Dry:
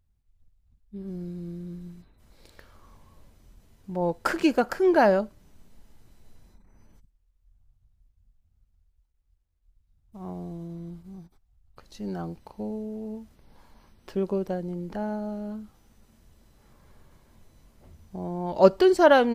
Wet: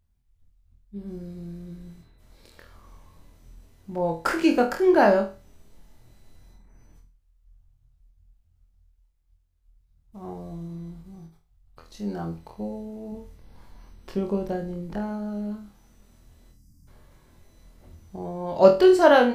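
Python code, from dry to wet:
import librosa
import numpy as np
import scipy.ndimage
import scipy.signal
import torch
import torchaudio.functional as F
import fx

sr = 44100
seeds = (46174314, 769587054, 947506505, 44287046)

p1 = fx.low_shelf(x, sr, hz=130.0, db=7.5, at=(13.12, 14.98))
p2 = fx.spec_box(p1, sr, start_s=16.51, length_s=0.37, low_hz=320.0, high_hz=4600.0, gain_db=-27)
y = p2 + fx.room_flutter(p2, sr, wall_m=4.2, rt60_s=0.32, dry=0)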